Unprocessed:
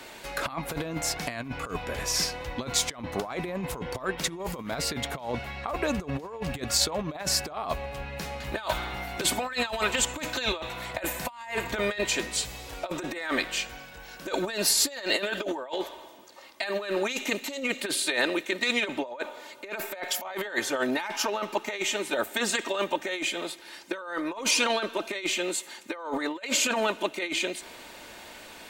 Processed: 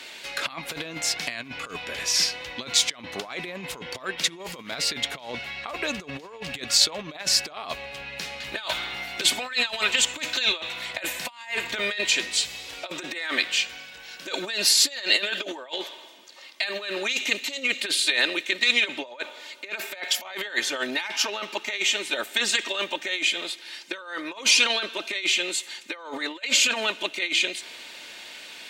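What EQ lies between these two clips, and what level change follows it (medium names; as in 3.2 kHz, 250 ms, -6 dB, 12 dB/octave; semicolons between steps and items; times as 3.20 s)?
frequency weighting D; -3.5 dB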